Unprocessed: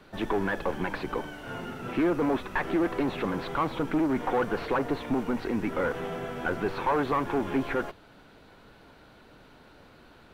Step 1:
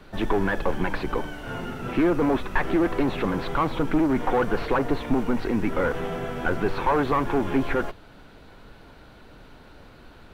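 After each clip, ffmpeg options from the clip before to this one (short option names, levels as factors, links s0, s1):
-af "lowshelf=f=72:g=11,volume=1.5"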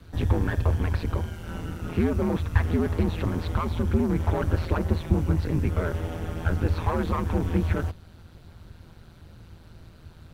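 -af "aeval=exprs='val(0)*sin(2*PI*82*n/s)':c=same,bass=f=250:g=10,treble=f=4000:g=9,volume=0.596"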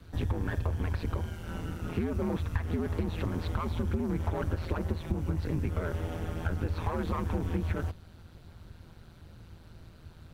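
-af "acompressor=threshold=0.0708:ratio=6,volume=0.708"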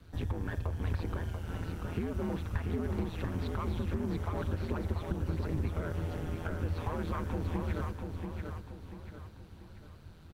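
-af "aecho=1:1:688|1376|2064|2752|3440:0.562|0.236|0.0992|0.0417|0.0175,volume=0.631"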